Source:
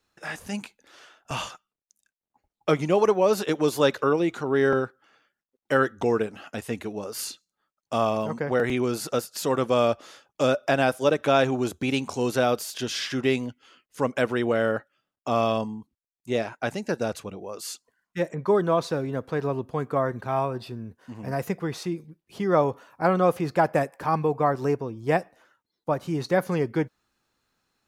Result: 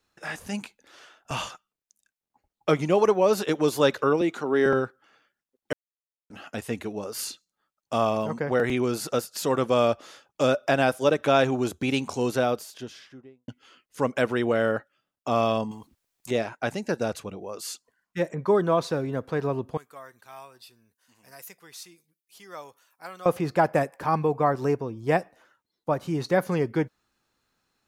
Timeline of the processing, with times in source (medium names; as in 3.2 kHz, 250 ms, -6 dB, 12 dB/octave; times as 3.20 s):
4.21–4.66 s: high-pass 170 Hz 24 dB/octave
5.73–6.30 s: mute
12.11–13.48 s: studio fade out
15.71–16.31 s: spectrum-flattening compressor 2:1
19.77–23.26 s: pre-emphasis filter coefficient 0.97